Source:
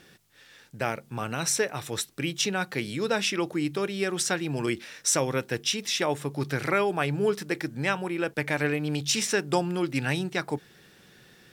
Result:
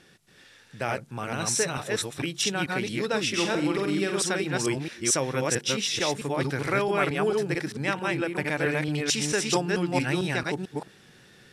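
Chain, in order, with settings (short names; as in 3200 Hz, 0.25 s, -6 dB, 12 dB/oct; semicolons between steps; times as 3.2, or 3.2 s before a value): reverse delay 0.222 s, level -1 dB; steep low-pass 12000 Hz 36 dB/oct; 3.29–4.21 flutter echo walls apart 8 m, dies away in 0.42 s; gain -1.5 dB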